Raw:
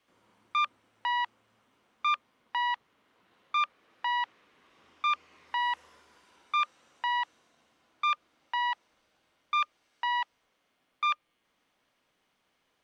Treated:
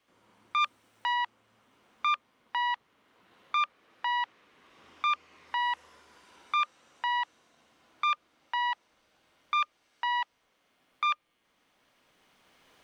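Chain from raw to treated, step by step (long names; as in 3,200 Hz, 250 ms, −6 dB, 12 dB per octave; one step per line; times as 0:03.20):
camcorder AGC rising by 7.9 dB per second
0:00.60–0:01.13: high-shelf EQ 4,100 Hz → 6,500 Hz +9.5 dB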